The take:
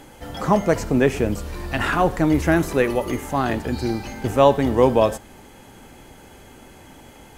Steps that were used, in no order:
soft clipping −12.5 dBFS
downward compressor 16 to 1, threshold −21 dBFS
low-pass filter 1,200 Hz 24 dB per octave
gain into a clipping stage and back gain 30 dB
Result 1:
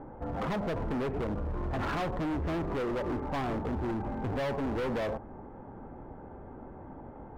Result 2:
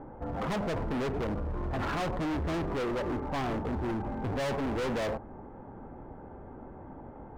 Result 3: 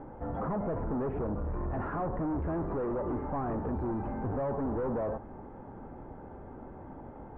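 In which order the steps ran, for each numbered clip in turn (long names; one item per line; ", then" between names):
soft clipping, then low-pass filter, then downward compressor, then gain into a clipping stage and back
soft clipping, then low-pass filter, then gain into a clipping stage and back, then downward compressor
soft clipping, then downward compressor, then gain into a clipping stage and back, then low-pass filter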